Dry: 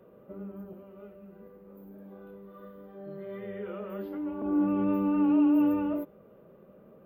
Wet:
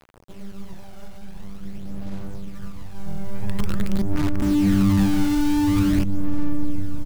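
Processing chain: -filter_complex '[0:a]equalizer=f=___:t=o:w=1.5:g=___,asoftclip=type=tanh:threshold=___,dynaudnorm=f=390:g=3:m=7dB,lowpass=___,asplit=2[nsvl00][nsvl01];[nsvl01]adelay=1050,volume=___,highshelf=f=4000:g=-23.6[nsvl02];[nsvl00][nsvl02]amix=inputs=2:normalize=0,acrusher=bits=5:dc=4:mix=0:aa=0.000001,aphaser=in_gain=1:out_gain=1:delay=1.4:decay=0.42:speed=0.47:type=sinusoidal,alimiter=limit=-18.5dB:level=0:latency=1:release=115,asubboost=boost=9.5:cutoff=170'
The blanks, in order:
110, 4.5, -26dB, 2400, -10dB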